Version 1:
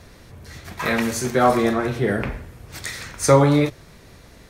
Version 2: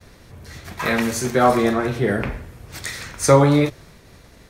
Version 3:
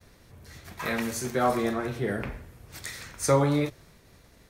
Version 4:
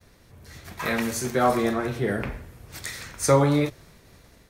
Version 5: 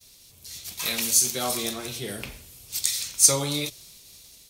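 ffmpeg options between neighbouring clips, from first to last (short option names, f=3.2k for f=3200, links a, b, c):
-af "agate=range=-33dB:threshold=-43dB:ratio=3:detection=peak,volume=1dB"
-af "highshelf=f=11k:g=6.5,volume=-9dB"
-af "dynaudnorm=f=310:g=3:m=3.5dB"
-af "aexciter=amount=10.6:drive=3.8:freq=2.6k,volume=-9.5dB"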